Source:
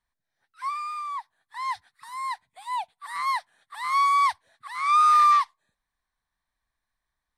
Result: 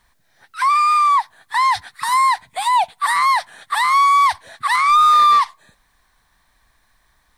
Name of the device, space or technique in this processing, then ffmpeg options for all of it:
loud club master: -af "acompressor=threshold=-27dB:ratio=1.5,asoftclip=type=hard:threshold=-20.5dB,alimiter=level_in=31.5dB:limit=-1dB:release=50:level=0:latency=1,volume=-8.5dB"

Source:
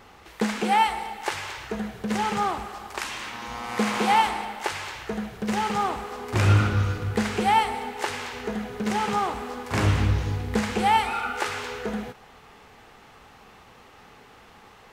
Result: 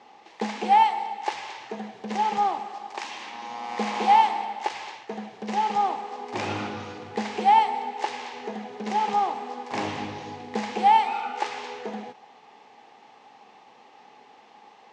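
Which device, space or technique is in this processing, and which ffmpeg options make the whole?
television speaker: -filter_complex "[0:a]asettb=1/sr,asplit=3[a][b][c];[a]atrim=end=4.694[d];[b]atrim=start=4.69:end=5.15,asetpts=PTS-STARTPTS,afade=t=in:d=0.004:c=qsin,afade=t=out:st=0.456:d=0.004:c=qsin,agate=range=-33dB:threshold=-34dB:ratio=3:detection=peak[e];[c]atrim=start=5.146[f];[d][e]acrossfade=d=0.004:c1=hsin:c2=qsin[g];[g][f]acrossfade=d=0.004:c1=qsin:c2=hsin,highpass=f=170:w=0.5412,highpass=f=170:w=1.3066,equalizer=f=170:t=q:w=4:g=-8,equalizer=f=820:t=q:w=4:g=9,equalizer=f=1.4k:t=q:w=4:g=-9,lowpass=f=6.5k:w=0.5412,lowpass=f=6.5k:w=1.3066,volume=-3.5dB"

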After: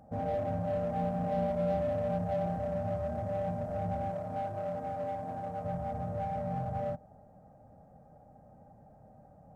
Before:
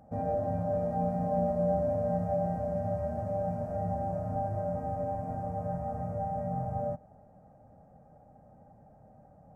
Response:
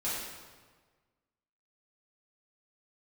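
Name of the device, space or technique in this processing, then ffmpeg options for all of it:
parallel distortion: -filter_complex "[0:a]asplit=2[a][b];[b]asoftclip=type=hard:threshold=-35dB,volume=-4.5dB[c];[a][c]amix=inputs=2:normalize=0,asettb=1/sr,asplit=3[d][e][f];[d]atrim=end=4.104[g];[e]atrim=start=4.1:end=5.65,asetpts=PTS-STARTPTS,afade=t=in:d=0.004:c=qsin,afade=t=out:st=1.546:d=0.004:c=qsin,highpass=f=220:p=1[h];[f]atrim=start=5.646[i];[g][h]acrossfade=d=0.004:c1=hsin:c2=qsin[j];[j][i]acrossfade=d=0.004:c1=qsin:c2=hsin,volume=-4dB"

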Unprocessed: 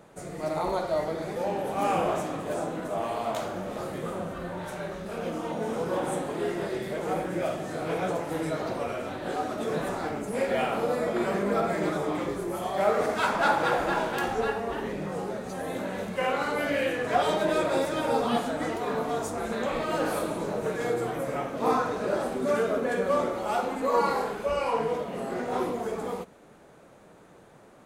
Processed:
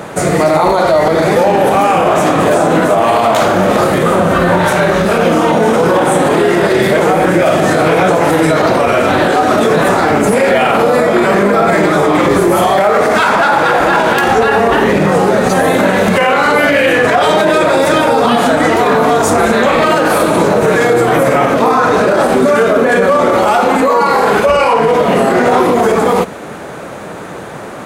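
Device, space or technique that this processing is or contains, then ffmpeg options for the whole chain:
mastering chain: -af "highpass=57,equalizer=f=1.6k:t=o:w=2:g=3.5,acompressor=threshold=-28dB:ratio=2.5,asoftclip=type=hard:threshold=-18dB,alimiter=level_in=27dB:limit=-1dB:release=50:level=0:latency=1,volume=-1dB"

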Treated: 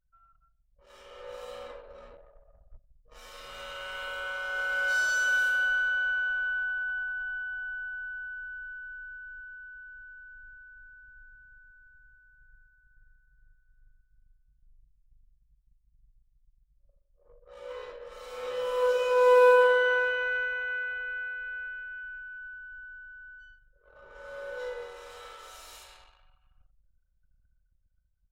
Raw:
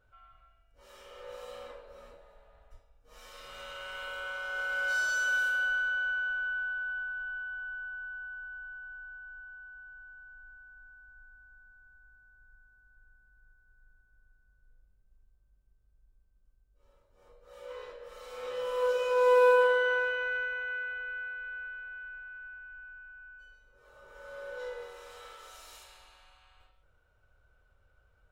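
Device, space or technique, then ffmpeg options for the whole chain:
voice memo with heavy noise removal: -af "anlmdn=0.000251,dynaudnorm=f=170:g=11:m=6.5dB,volume=-3.5dB"

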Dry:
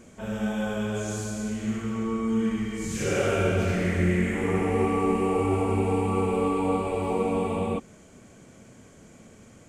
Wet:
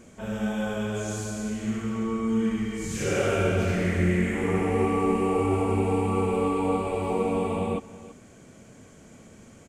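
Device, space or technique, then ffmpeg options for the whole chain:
ducked delay: -filter_complex "[0:a]asplit=3[a][b][c];[b]adelay=330,volume=-7dB[d];[c]apad=whole_len=441605[e];[d][e]sidechaincompress=threshold=-36dB:ratio=8:attack=16:release=1090[f];[a][f]amix=inputs=2:normalize=0"

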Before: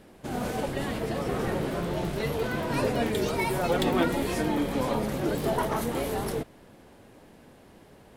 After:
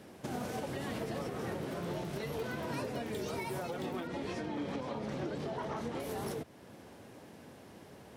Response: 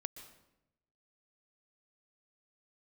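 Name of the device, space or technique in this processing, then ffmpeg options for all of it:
broadcast voice chain: -filter_complex "[0:a]highpass=f=73:w=0.5412,highpass=f=73:w=1.3066,deesser=0.7,acompressor=threshold=-29dB:ratio=6,equalizer=f=5.7k:t=o:w=0.36:g=4,alimiter=level_in=4.5dB:limit=-24dB:level=0:latency=1:release=400,volume=-4.5dB,asettb=1/sr,asplit=3[a][b][c];[a]atrim=end=4.074[d];[b]atrim=start=4.07:end=6,asetpts=PTS-STARTPTS,afade=t=in:d=0.004:c=qsin,afade=t=out:st=1.926:d=0.004:c=qsin,lowpass=5.3k[e];[c]atrim=start=5.996[f];[d][e]acrossfade=d=0.004:c1=hsin:c2=qsin[g];[g][f]acrossfade=d=0.004:c1=qsin:c2=hsin"

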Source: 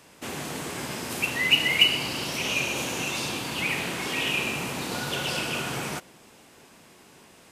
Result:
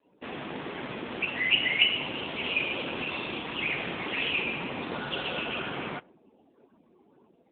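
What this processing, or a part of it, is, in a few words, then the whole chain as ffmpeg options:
mobile call with aggressive noise cancelling: -af "highpass=170,afftdn=nr=32:nf=-48" -ar 8000 -c:a libopencore_amrnb -b:a 7950

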